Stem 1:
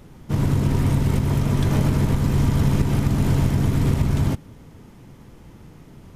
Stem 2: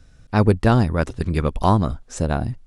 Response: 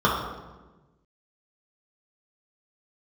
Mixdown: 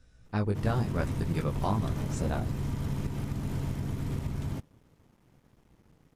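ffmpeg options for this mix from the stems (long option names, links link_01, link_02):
-filter_complex "[0:a]aeval=exprs='sgn(val(0))*max(abs(val(0))-0.00355,0)':channel_layout=same,adelay=250,volume=-13.5dB[link_01];[1:a]flanger=delay=16:depth=4:speed=0.94,acompressor=threshold=-21dB:ratio=2.5,volume=-6dB[link_02];[link_01][link_02]amix=inputs=2:normalize=0"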